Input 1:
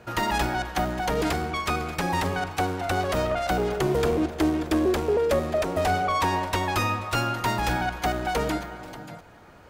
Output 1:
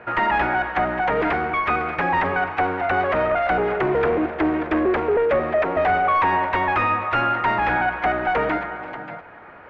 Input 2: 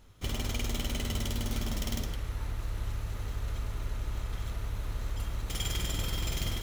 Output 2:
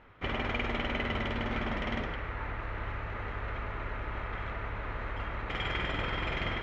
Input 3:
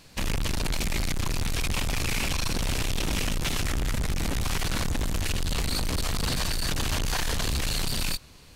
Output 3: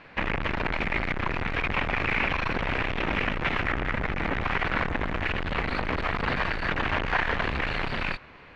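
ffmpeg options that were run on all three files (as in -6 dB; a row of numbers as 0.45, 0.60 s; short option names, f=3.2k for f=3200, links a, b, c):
-filter_complex "[0:a]asplit=2[a][b];[b]highpass=f=720:p=1,volume=16dB,asoftclip=type=tanh:threshold=-10dB[c];[a][c]amix=inputs=2:normalize=0,lowpass=f=1.3k:p=1,volume=-6dB,lowpass=f=2.1k:t=q:w=1.8"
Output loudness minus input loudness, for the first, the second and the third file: +4.5, 0.0, +1.0 LU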